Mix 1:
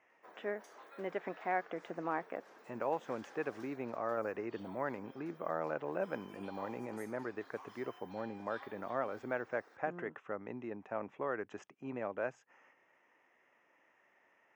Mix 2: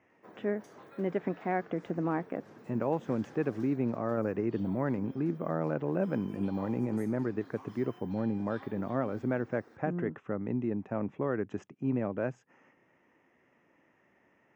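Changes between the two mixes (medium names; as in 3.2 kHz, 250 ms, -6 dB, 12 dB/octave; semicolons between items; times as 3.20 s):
speech: add high-pass 220 Hz 12 dB/octave; master: remove high-pass 610 Hz 12 dB/octave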